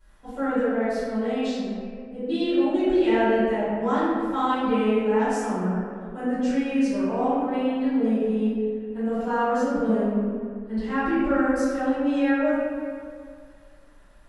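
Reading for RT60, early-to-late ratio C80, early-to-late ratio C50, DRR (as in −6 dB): 2.1 s, −1.5 dB, −4.0 dB, −17.0 dB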